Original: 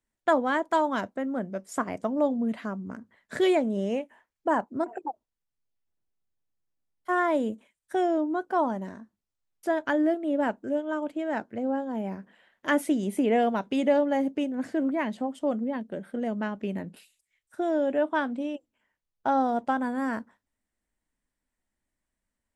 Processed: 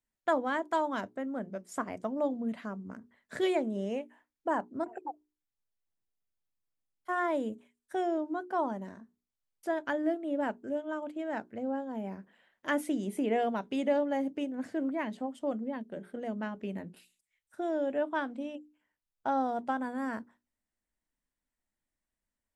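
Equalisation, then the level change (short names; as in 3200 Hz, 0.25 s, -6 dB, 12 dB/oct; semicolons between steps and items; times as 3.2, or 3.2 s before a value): notches 60/120/180/240/300/360/420 Hz; -5.5 dB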